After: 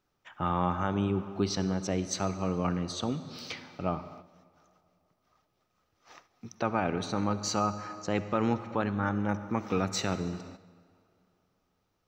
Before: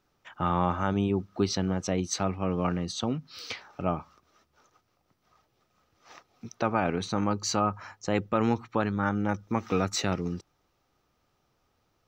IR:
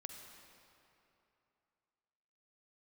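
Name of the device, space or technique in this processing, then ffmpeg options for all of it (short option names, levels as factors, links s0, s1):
keyed gated reverb: -filter_complex "[0:a]asplit=3[s0][s1][s2];[1:a]atrim=start_sample=2205[s3];[s1][s3]afir=irnorm=-1:irlink=0[s4];[s2]apad=whole_len=532722[s5];[s4][s5]sidechaingate=range=0.355:threshold=0.00141:ratio=16:detection=peak,volume=1.41[s6];[s0][s6]amix=inputs=2:normalize=0,volume=0.422"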